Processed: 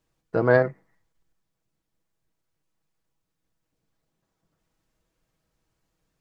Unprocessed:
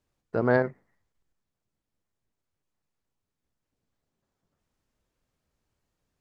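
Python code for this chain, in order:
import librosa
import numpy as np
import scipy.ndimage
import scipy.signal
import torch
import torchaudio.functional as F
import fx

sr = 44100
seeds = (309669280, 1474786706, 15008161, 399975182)

y = x + 0.43 * np.pad(x, (int(6.2 * sr / 1000.0), 0))[:len(x)]
y = y * 10.0 ** (3.0 / 20.0)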